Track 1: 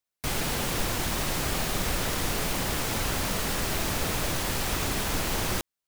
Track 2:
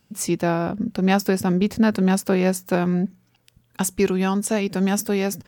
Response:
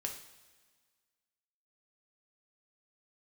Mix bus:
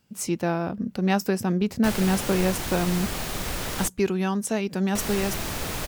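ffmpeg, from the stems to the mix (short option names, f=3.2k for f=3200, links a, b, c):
-filter_complex "[0:a]adelay=1600,volume=-2dB,asplit=3[a][b][c];[a]atrim=end=3.88,asetpts=PTS-STARTPTS,afade=t=out:st=3.876:d=0.004:c=hsin[d];[b]atrim=start=3.88:end=4.95,asetpts=PTS-STARTPTS,volume=0[e];[c]atrim=start=4.95,asetpts=PTS-STARTPTS,afade=t=in:d=0.004:c=hsin[f];[d][e][f]concat=n=3:v=0:a=1[g];[1:a]volume=-4dB[h];[g][h]amix=inputs=2:normalize=0"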